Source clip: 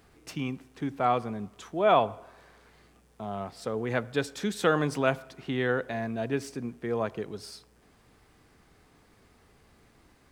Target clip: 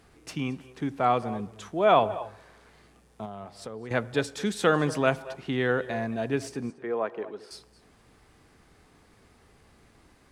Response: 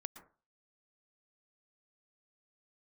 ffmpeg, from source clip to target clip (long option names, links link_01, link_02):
-filter_complex "[0:a]asettb=1/sr,asplit=3[link_01][link_02][link_03];[link_01]atrim=end=3.254[link_04];[link_02]atrim=start=3.25:end=3.91,asetpts=PTS-STARTPTS,afade=type=in:duration=0.004:curve=qsin,afade=type=out:start_time=0.656:duration=0.004:curve=qsin,acompressor=threshold=-42dB:ratio=2.5[link_05];[link_03]atrim=start=3.906[link_06];[link_04][link_05]acrossfade=duration=0.004:curve1=hsin:curve2=qsin[link_07];[link_07][link_06]acrossfade=duration=0.004:curve1=qsin:curve2=hsin,asettb=1/sr,asplit=3[link_08][link_09][link_10];[link_08]atrim=end=6.704[link_11];[link_09]atrim=start=6.7:end=7.51,asetpts=PTS-STARTPTS,afade=type=in:duration=0.004:curve=qsin,afade=type=out:start_time=0.806:duration=0.004:curve=qsin,acrossover=split=260 2800:gain=0.0708 1 0.141[link_12][link_13][link_14];[link_12][link_13][link_14]amix=inputs=3:normalize=0[link_15];[link_10]atrim=start=7.506[link_16];[link_11][link_15]acrossfade=duration=0.004:curve1=hsin:curve2=qsin[link_17];[link_17][link_16]acrossfade=duration=0.004:curve1=qsin:curve2=hsin[link_18];[1:a]atrim=start_sample=2205,afade=type=out:start_time=0.16:duration=0.01,atrim=end_sample=7497,asetrate=22050,aresample=44100[link_19];[link_18][link_19]afir=irnorm=-1:irlink=0,volume=2.5dB"